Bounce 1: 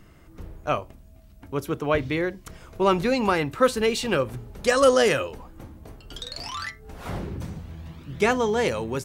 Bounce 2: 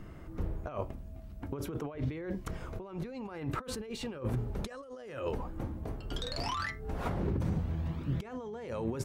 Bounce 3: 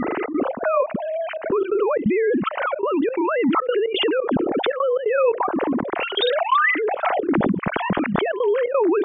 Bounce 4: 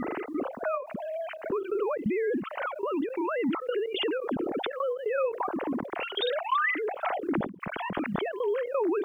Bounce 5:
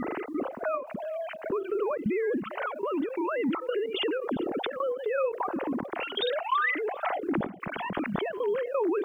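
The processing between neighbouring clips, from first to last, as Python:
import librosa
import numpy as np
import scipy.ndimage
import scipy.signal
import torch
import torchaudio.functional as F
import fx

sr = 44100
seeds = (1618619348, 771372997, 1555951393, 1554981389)

y1 = fx.over_compress(x, sr, threshold_db=-34.0, ratio=-1.0)
y1 = fx.high_shelf(y1, sr, hz=2100.0, db=-11.5)
y1 = y1 * librosa.db_to_amplitude(-2.5)
y2 = fx.sine_speech(y1, sr)
y2 = fx.step_gate(y2, sr, bpm=175, pattern='xxx.xx.xxx.xx', floor_db=-24.0, edge_ms=4.5)
y2 = fx.env_flatten(y2, sr, amount_pct=70)
y2 = y2 * librosa.db_to_amplitude(8.0)
y3 = fx.quant_dither(y2, sr, seeds[0], bits=10, dither='none')
y3 = fx.end_taper(y3, sr, db_per_s=140.0)
y3 = y3 * librosa.db_to_amplitude(-8.5)
y4 = y3 + 10.0 ** (-20.5 / 20.0) * np.pad(y3, (int(400 * sr / 1000.0), 0))[:len(y3)]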